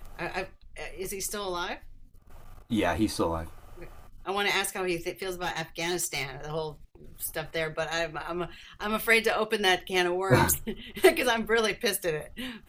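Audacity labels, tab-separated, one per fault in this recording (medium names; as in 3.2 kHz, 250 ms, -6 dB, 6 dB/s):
5.220000	6.300000	clipped -25 dBFS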